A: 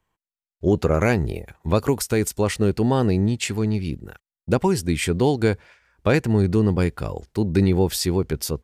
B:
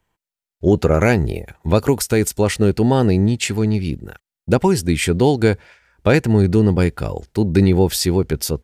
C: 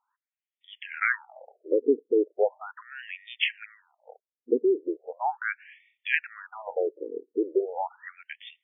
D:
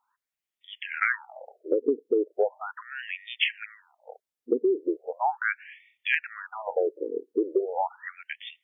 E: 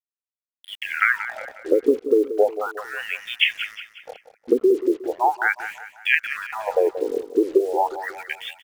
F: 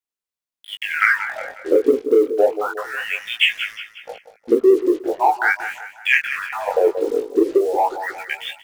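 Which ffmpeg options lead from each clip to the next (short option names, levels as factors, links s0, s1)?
-af "bandreject=f=1100:w=9,volume=1.68"
-af "bass=f=250:g=-14,treble=f=4000:g=6,afftfilt=real='re*between(b*sr/1024,340*pow(2600/340,0.5+0.5*sin(2*PI*0.38*pts/sr))/1.41,340*pow(2600/340,0.5+0.5*sin(2*PI*0.38*pts/sr))*1.41)':imag='im*between(b*sr/1024,340*pow(2600/340,0.5+0.5*sin(2*PI*0.38*pts/sr))/1.41,340*pow(2600/340,0.5+0.5*sin(2*PI*0.38*pts/sr))*1.41)':win_size=1024:overlap=0.75,volume=0.841"
-af "acompressor=threshold=0.0631:ratio=6,volume=1.58"
-af "acrusher=bits=7:mix=0:aa=0.5,aecho=1:1:181|362|543|724:0.251|0.111|0.0486|0.0214,volume=2.11"
-filter_complex "[0:a]flanger=delay=16.5:depth=6.6:speed=0.25,asplit=2[s0][s1];[s1]asoftclip=type=hard:threshold=0.0668,volume=0.266[s2];[s0][s2]amix=inputs=2:normalize=0,volume=1.78"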